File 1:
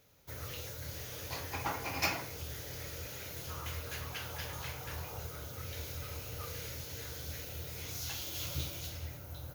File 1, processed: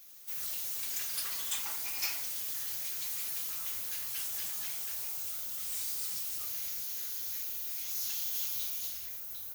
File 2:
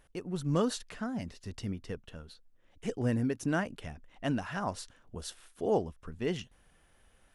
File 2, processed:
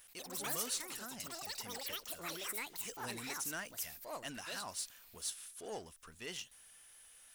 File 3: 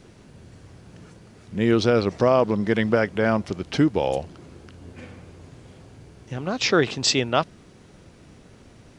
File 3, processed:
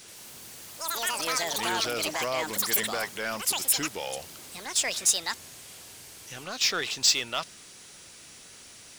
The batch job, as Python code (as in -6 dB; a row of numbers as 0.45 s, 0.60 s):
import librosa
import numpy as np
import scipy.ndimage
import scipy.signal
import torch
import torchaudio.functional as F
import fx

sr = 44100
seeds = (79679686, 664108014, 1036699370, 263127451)

y = fx.echo_pitch(x, sr, ms=82, semitones=6, count=3, db_per_echo=-3.0)
y = scipy.signal.lfilter([1.0, -0.97], [1.0], y)
y = fx.power_curve(y, sr, exponent=0.7)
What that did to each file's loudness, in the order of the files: +6.5 LU, -7.0 LU, -5.0 LU